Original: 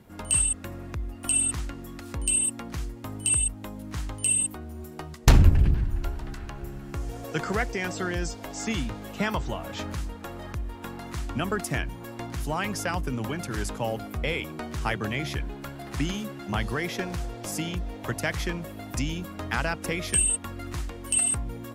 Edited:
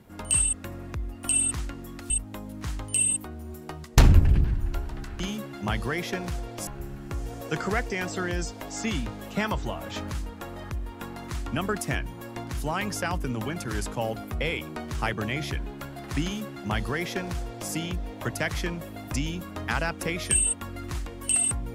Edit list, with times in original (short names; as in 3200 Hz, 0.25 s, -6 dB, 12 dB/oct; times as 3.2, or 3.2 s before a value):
2.1–3.4 cut
16.06–17.53 copy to 6.5